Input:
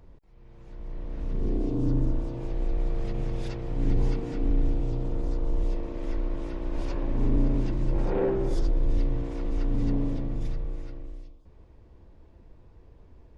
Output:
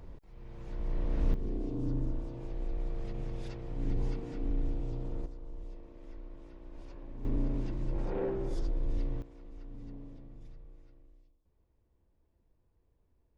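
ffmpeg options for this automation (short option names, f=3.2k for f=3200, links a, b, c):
-af "asetnsamples=n=441:p=0,asendcmd='1.34 volume volume -8dB;5.26 volume volume -17.5dB;7.25 volume volume -8dB;9.22 volume volume -20dB',volume=3.5dB"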